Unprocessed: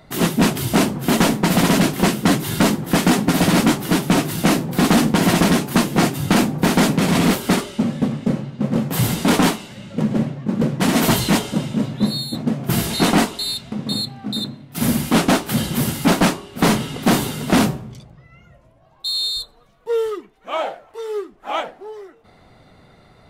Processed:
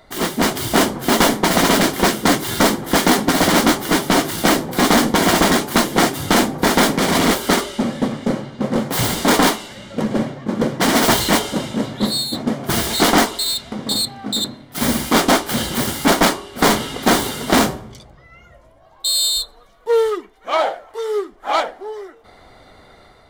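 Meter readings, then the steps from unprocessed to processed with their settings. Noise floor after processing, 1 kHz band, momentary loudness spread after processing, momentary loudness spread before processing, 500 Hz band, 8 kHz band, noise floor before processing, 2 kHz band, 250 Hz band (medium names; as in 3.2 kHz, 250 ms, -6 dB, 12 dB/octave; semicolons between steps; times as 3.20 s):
-48 dBFS, +4.5 dB, 9 LU, 10 LU, +3.5 dB, +4.5 dB, -51 dBFS, +4.0 dB, -1.5 dB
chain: self-modulated delay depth 0.098 ms; peaking EQ 150 Hz -12 dB 1.4 oct; band-stop 2.6 kHz, Q 7.6; level rider gain up to 5 dB; trim +1.5 dB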